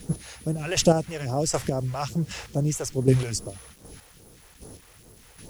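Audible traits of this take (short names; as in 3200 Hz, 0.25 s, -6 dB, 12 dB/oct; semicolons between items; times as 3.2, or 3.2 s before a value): chopped level 1.3 Hz, depth 60%, duty 20%; phasing stages 2, 2.4 Hz, lowest notch 200–2500 Hz; a quantiser's noise floor 10-bit, dither none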